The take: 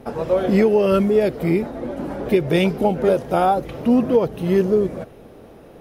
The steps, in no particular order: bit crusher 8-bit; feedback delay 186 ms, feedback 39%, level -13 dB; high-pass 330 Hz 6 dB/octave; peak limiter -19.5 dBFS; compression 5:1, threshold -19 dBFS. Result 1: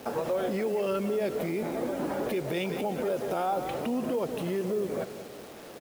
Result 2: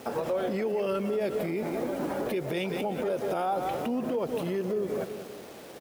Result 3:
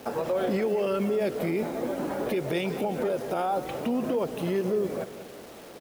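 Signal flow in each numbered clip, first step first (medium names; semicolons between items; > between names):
compression > feedback delay > peak limiter > high-pass > bit crusher; bit crusher > feedback delay > compression > peak limiter > high-pass; high-pass > compression > bit crusher > peak limiter > feedback delay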